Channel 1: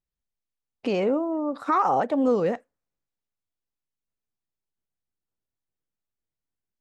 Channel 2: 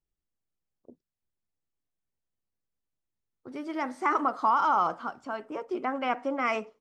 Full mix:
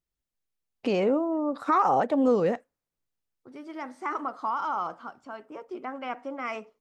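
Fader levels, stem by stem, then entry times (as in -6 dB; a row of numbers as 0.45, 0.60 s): -0.5, -5.5 dB; 0.00, 0.00 s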